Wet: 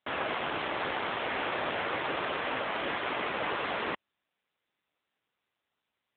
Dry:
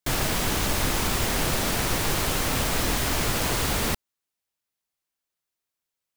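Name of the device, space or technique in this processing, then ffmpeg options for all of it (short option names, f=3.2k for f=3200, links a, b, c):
telephone: -af "highpass=390,lowpass=3k" -ar 8000 -c:a libopencore_amrnb -b:a 7950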